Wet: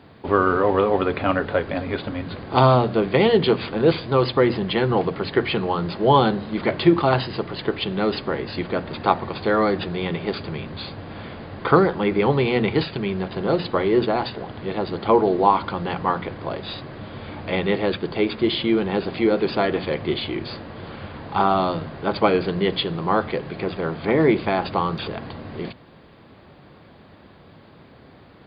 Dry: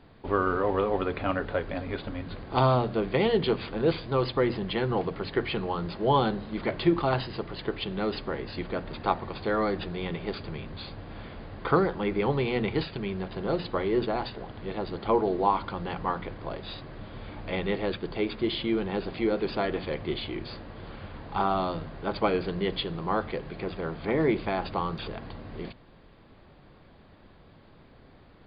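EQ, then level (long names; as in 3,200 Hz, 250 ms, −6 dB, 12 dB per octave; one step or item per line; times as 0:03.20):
high-pass filter 82 Hz
+7.5 dB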